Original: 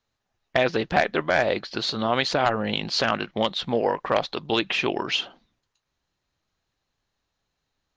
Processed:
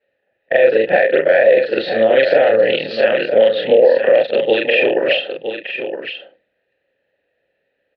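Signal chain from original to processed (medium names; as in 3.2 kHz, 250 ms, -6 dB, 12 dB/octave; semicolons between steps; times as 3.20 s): short-time spectra conjugated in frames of 90 ms; dynamic bell 4.1 kHz, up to +6 dB, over -43 dBFS, Q 1.4; compression, threshold -25 dBFS, peak gain reduction 7.5 dB; vowel filter e; distance through air 350 m; on a send: delay 965 ms -9 dB; on the sum: loudness maximiser +30 dB; trim -1 dB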